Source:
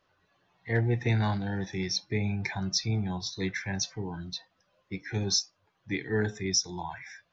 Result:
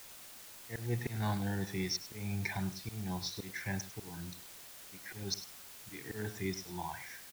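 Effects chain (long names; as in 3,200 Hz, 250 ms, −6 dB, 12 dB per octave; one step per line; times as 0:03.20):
volume swells 243 ms
bit-depth reduction 8 bits, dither triangular
single-tap delay 101 ms −14.5 dB
level −4 dB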